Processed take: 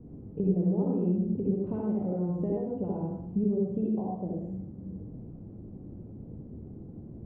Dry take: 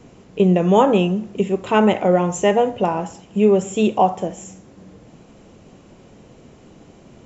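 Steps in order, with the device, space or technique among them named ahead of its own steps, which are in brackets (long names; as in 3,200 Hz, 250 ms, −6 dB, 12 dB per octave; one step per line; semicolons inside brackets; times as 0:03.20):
television next door (downward compressor 5 to 1, threshold −25 dBFS, peak gain reduction 14.5 dB; low-pass filter 270 Hz 12 dB per octave; convolution reverb RT60 0.60 s, pre-delay 57 ms, DRR −3 dB)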